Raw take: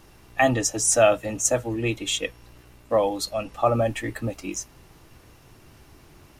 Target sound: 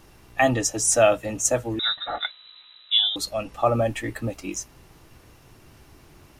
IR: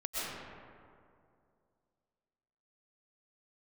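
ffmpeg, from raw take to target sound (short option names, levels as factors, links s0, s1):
-filter_complex "[0:a]asettb=1/sr,asplit=3[s0][s1][s2];[s0]atrim=end=1.794[s3];[s1]atrim=start=1.79:end=3.16,asetpts=PTS-STARTPTS,afade=t=in:d=0.004:c=qsin,afade=t=out:st=1.366:d=0.004:c=qsin,lowpass=f=3400:t=q:w=0.5098,lowpass=f=3400:t=q:w=0.6013,lowpass=f=3400:t=q:w=0.9,lowpass=f=3400:t=q:w=2.563,afreqshift=-4000[s4];[s2]atrim=start=3.156[s5];[s3][s4]acrossfade=d=0.004:c1=hsin:c2=qsin[s6];[s6][s5]acrossfade=d=0.004:c1=qsin:c2=hsin"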